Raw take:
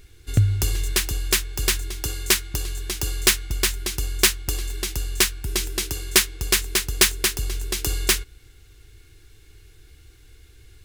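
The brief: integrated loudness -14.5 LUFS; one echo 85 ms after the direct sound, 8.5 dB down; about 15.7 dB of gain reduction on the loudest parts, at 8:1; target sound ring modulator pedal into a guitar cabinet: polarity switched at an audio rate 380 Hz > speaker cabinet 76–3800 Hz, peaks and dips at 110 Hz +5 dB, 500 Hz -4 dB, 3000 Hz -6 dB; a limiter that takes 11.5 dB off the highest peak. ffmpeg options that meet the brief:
-af "acompressor=threshold=-29dB:ratio=8,alimiter=limit=-22.5dB:level=0:latency=1,aecho=1:1:85:0.376,aeval=exprs='val(0)*sgn(sin(2*PI*380*n/s))':c=same,highpass=76,equalizer=f=110:t=q:w=4:g=5,equalizer=f=500:t=q:w=4:g=-4,equalizer=f=3k:t=q:w=4:g=-6,lowpass=f=3.8k:w=0.5412,lowpass=f=3.8k:w=1.3066,volume=21dB"

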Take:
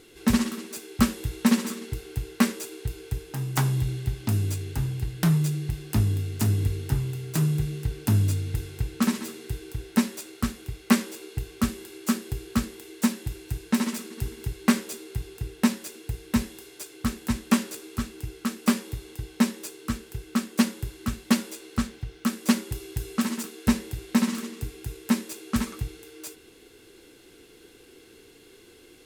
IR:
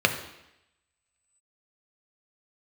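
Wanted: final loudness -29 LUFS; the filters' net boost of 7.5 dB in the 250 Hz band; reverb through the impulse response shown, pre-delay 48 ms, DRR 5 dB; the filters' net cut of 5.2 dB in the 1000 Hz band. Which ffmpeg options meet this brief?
-filter_complex "[0:a]equalizer=f=250:t=o:g=8.5,equalizer=f=1k:t=o:g=-7,asplit=2[a][b];[1:a]atrim=start_sample=2205,adelay=48[c];[b][c]afir=irnorm=-1:irlink=0,volume=-21dB[d];[a][d]amix=inputs=2:normalize=0,volume=-8dB"

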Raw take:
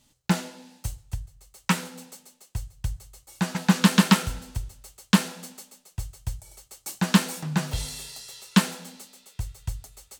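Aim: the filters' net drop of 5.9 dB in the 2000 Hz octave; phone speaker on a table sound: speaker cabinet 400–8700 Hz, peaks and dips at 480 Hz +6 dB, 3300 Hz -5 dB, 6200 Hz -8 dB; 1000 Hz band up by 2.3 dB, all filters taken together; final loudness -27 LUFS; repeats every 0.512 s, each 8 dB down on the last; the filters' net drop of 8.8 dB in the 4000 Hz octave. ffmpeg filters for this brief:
-af "highpass=f=400:w=0.5412,highpass=f=400:w=1.3066,equalizer=f=480:t=q:w=4:g=6,equalizer=f=3.3k:t=q:w=4:g=-5,equalizer=f=6.2k:t=q:w=4:g=-8,lowpass=f=8.7k:w=0.5412,lowpass=f=8.7k:w=1.3066,equalizer=f=1k:t=o:g=5,equalizer=f=2k:t=o:g=-8.5,equalizer=f=4k:t=o:g=-5,aecho=1:1:512|1024|1536|2048|2560:0.398|0.159|0.0637|0.0255|0.0102,volume=6dB"

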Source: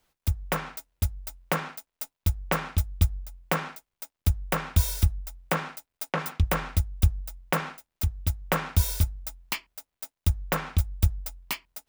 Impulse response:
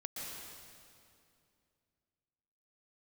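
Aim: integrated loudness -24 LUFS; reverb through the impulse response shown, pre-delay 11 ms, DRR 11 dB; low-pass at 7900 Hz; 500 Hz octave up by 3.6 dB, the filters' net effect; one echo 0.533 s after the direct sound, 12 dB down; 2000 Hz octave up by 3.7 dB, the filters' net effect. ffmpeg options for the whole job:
-filter_complex "[0:a]lowpass=7.9k,equalizer=f=500:t=o:g=4,equalizer=f=2k:t=o:g=4.5,aecho=1:1:533:0.251,asplit=2[a][b];[1:a]atrim=start_sample=2205,adelay=11[c];[b][c]afir=irnorm=-1:irlink=0,volume=-11dB[d];[a][d]amix=inputs=2:normalize=0,volume=4.5dB"

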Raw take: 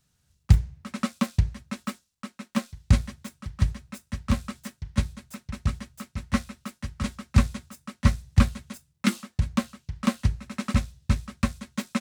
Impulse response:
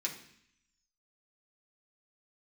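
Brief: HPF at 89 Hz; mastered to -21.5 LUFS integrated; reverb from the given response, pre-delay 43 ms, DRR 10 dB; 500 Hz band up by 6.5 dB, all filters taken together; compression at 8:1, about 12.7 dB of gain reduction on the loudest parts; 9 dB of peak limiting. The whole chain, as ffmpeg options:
-filter_complex "[0:a]highpass=89,equalizer=f=500:t=o:g=7.5,acompressor=threshold=-28dB:ratio=8,alimiter=level_in=0.5dB:limit=-24dB:level=0:latency=1,volume=-0.5dB,asplit=2[a][b];[1:a]atrim=start_sample=2205,adelay=43[c];[b][c]afir=irnorm=-1:irlink=0,volume=-12dB[d];[a][d]amix=inputs=2:normalize=0,volume=18.5dB"

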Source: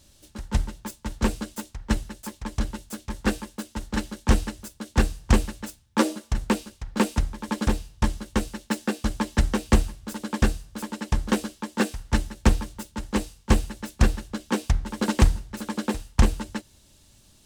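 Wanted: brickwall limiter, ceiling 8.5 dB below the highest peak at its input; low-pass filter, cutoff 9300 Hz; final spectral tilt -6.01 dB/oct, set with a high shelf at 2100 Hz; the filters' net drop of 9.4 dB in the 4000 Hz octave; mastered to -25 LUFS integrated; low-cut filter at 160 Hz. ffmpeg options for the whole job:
-af "highpass=160,lowpass=9.3k,highshelf=f=2.1k:g=-6,equalizer=f=4k:t=o:g=-6.5,volume=9dB,alimiter=limit=-7.5dB:level=0:latency=1"

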